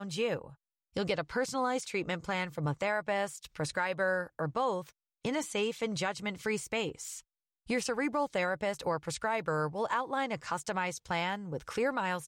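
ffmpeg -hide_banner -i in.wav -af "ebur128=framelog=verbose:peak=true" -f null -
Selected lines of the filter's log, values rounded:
Integrated loudness:
  I:         -33.6 LUFS
  Threshold: -43.8 LUFS
Loudness range:
  LRA:         1.7 LU
  Threshold: -53.8 LUFS
  LRA low:   -34.7 LUFS
  LRA high:  -33.0 LUFS
True peak:
  Peak:      -18.4 dBFS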